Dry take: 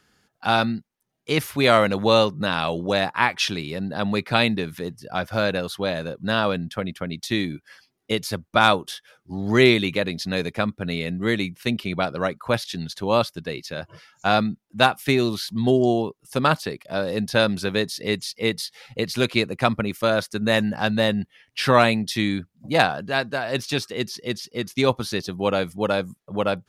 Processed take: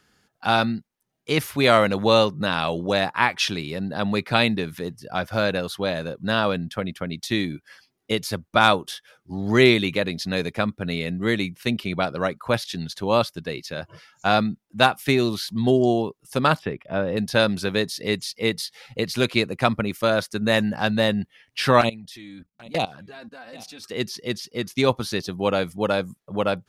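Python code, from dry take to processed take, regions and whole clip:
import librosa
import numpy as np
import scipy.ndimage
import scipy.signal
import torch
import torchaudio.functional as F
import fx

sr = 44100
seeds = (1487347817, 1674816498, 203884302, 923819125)

y = fx.chain(x, sr, fx.savgol(points=25),
    fx.low_shelf(hz=190.0, db=5.5), at=(16.59, 17.17))
y = fx.chain(y, sr, fx.level_steps(step_db=19),
    fx.env_flanger(rest_ms=6.1, full_db=-18.0),
    fx.echo_single(ms=784, db=-21.5), at=(21.81, 23.84))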